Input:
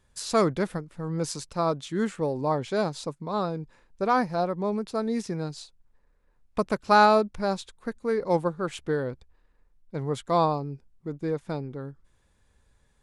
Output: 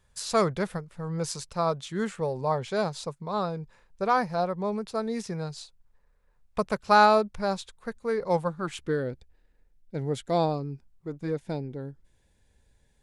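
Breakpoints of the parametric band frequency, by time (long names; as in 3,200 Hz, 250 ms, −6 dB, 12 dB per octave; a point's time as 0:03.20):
parametric band −15 dB 0.36 octaves
0:08.34 290 Hz
0:09.11 1,100 Hz
0:10.49 1,100 Hz
0:11.15 180 Hz
0:11.38 1,200 Hz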